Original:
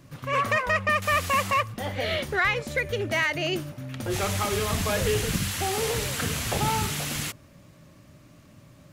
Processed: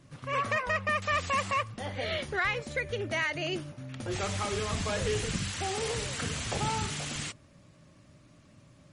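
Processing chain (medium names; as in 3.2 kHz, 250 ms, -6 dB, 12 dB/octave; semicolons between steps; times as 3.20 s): 2.63–5.11 s: treble shelf 10 kHz -3 dB; trim -5 dB; MP3 40 kbps 44.1 kHz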